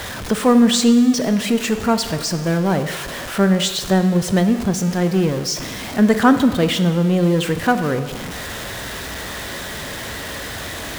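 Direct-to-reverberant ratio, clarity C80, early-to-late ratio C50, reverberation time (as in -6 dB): 9.0 dB, 12.5 dB, 11.0 dB, 1.4 s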